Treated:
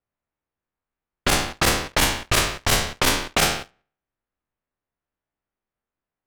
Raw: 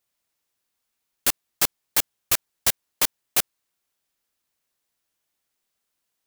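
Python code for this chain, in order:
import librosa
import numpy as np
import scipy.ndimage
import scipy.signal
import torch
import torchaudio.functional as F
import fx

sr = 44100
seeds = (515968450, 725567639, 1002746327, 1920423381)

p1 = fx.spec_trails(x, sr, decay_s=0.57)
p2 = fx.level_steps(p1, sr, step_db=20)
p3 = p1 + (p2 * 10.0 ** (-1.0 / 20.0))
p4 = fx.lowpass(p3, sr, hz=3100.0, slope=6)
p5 = fx.low_shelf(p4, sr, hz=270.0, db=4.5)
p6 = fx.env_lowpass(p5, sr, base_hz=1800.0, full_db=-16.5)
p7 = fx.low_shelf(p6, sr, hz=65.0, db=7.0)
p8 = fx.over_compress(p7, sr, threshold_db=-22.0, ratio=-1.0)
p9 = fx.leveller(p8, sr, passes=3)
y = p9 * 10.0 ** (-4.0 / 20.0)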